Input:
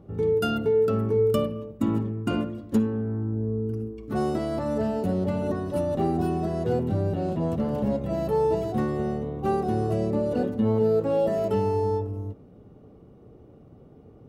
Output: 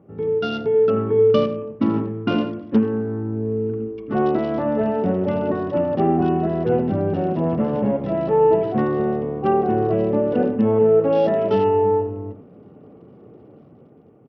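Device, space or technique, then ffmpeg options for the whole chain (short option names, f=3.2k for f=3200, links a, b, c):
Bluetooth headset: -filter_complex "[0:a]asettb=1/sr,asplit=3[a][b][c];[a]atrim=end=11.164[d];[b]atrim=start=11.16:end=11.69,asetpts=PTS-STARTPTS,afade=t=in:d=0.004:c=qsin,afade=t=out:st=0.526:d=0.004:c=qsin,highshelf=f=2.8k:g=5.5[e];[c]atrim=start=11.686[f];[d][e]acrossfade=d=0.004:c1=hsin:c2=qsin[g];[g][f]acrossfade=d=0.004:c1=qsin:c2=hsin,highpass=150,aecho=1:1:84:0.251,dynaudnorm=f=240:g=7:m=6.5dB,aresample=8000,aresample=44100" -ar 44100 -c:a sbc -b:a 64k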